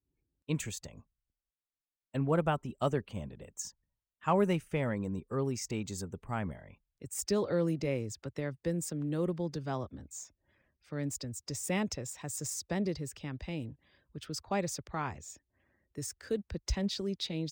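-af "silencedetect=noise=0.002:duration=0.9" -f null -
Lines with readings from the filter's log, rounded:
silence_start: 1.01
silence_end: 2.14 | silence_duration: 1.13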